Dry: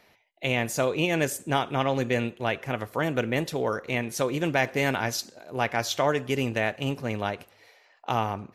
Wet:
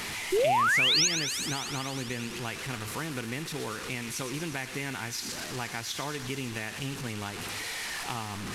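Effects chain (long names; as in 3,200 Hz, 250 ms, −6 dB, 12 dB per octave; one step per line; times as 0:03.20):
linear delta modulator 64 kbit/s, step −27 dBFS
parametric band 590 Hz −12 dB 0.67 octaves
downward compressor, threshold −29 dBFS, peak gain reduction 8.5 dB
sound drawn into the spectrogram rise, 0:00.32–0:01.08, 350–7,000 Hz −22 dBFS
delay with a high-pass on its return 118 ms, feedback 80%, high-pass 2,300 Hz, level −9 dB
level −2 dB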